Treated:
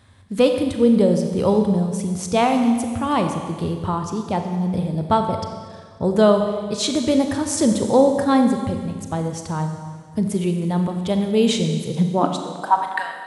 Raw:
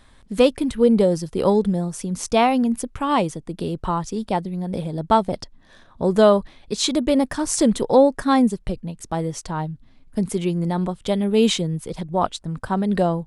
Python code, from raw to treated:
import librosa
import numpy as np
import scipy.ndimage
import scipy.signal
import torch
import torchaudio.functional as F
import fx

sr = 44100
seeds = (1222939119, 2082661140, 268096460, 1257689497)

y = fx.filter_sweep_highpass(x, sr, from_hz=95.0, to_hz=2000.0, start_s=11.77, end_s=13.08, q=6.5)
y = fx.rev_schroeder(y, sr, rt60_s=1.8, comb_ms=30, drr_db=5.0)
y = y * librosa.db_to_amplitude(-1.5)